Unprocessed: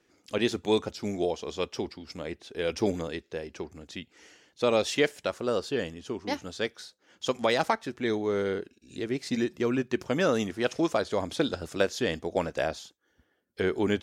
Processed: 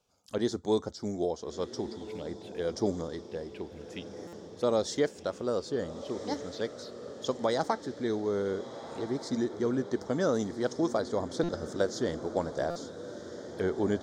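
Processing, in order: envelope phaser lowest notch 310 Hz, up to 2600 Hz, full sweep at -32.5 dBFS; diffused feedback echo 1.402 s, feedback 52%, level -12 dB; stuck buffer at 4.27/11.43/12.7, samples 256, times 9; gain -2 dB

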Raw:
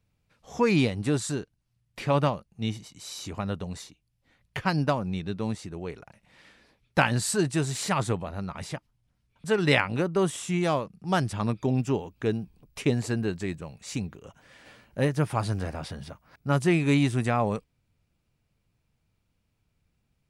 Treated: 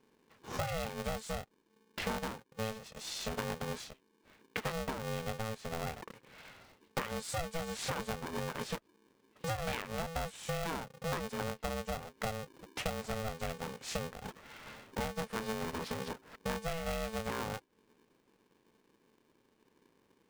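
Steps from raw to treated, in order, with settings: LPF 3400 Hz 6 dB/oct; compressor 10:1, threshold -37 dBFS, peak gain reduction 20.5 dB; polarity switched at an audio rate 330 Hz; gain +3 dB

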